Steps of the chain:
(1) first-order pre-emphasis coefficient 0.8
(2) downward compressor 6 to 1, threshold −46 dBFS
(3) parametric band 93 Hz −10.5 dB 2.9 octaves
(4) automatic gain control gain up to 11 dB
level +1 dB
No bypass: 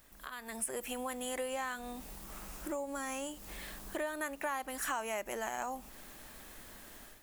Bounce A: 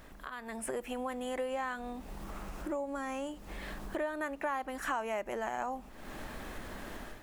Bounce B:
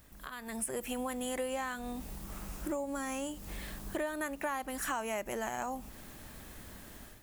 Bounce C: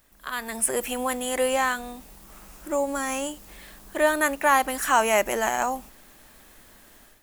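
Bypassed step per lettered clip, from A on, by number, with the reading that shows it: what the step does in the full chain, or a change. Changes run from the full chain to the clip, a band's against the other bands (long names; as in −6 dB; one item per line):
1, 8 kHz band −10.5 dB
3, 125 Hz band +7.5 dB
2, average gain reduction 7.5 dB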